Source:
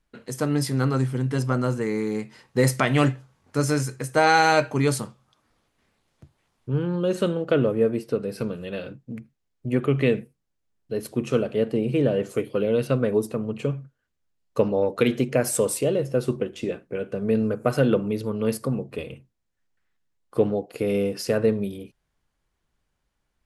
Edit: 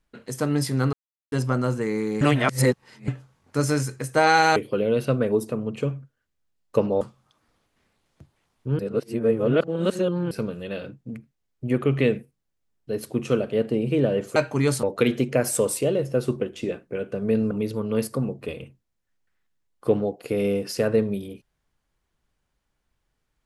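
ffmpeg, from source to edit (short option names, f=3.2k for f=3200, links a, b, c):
-filter_complex "[0:a]asplit=12[a][b][c][d][e][f][g][h][i][j][k][l];[a]atrim=end=0.93,asetpts=PTS-STARTPTS,afade=t=out:st=0.926:d=0.004:c=hsin[m];[b]atrim=start=0.93:end=1.32,asetpts=PTS-STARTPTS,volume=0[n];[c]atrim=start=1.32:end=2.212,asetpts=PTS-STARTPTS,afade=t=in:d=0.004:c=hsin[o];[d]atrim=start=2.208:end=3.082,asetpts=PTS-STARTPTS,areverse[p];[e]atrim=start=3.078:end=4.562[q];[f]atrim=start=12.378:end=14.832[r];[g]atrim=start=5.028:end=6.812[s];[h]atrim=start=6.808:end=8.332,asetpts=PTS-STARTPTS,areverse[t];[i]atrim=start=8.328:end=12.382[u];[j]atrim=start=4.558:end=5.032[v];[k]atrim=start=14.828:end=17.512[w];[l]atrim=start=18.008[x];[m][n][o]concat=n=3:v=0:a=1[y];[y][p]acrossfade=d=0.004:c1=hsin:c2=hsin[z];[z][q]acrossfade=d=0.004:c1=hsin:c2=hsin[aa];[aa][r]acrossfade=d=0.004:c1=hsin:c2=hsin[ab];[ab][s]acrossfade=d=0.004:c1=hsin:c2=hsin[ac];[ac][t]acrossfade=d=0.004:c1=hsin:c2=hsin[ad];[ad][u]acrossfade=d=0.004:c1=hsin:c2=hsin[ae];[ae][v]acrossfade=d=0.004:c1=hsin:c2=hsin[af];[af][w]acrossfade=d=0.004:c1=hsin:c2=hsin[ag];[ag][x]acrossfade=d=0.004:c1=hsin:c2=hsin"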